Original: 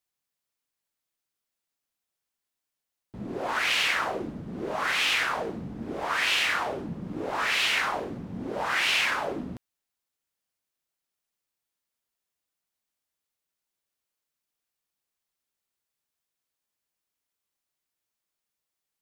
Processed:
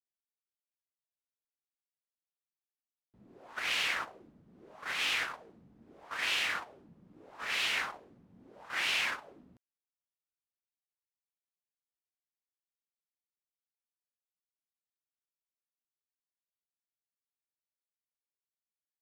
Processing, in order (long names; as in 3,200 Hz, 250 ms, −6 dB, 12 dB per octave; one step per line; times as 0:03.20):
noise gate −26 dBFS, range −17 dB
level −6.5 dB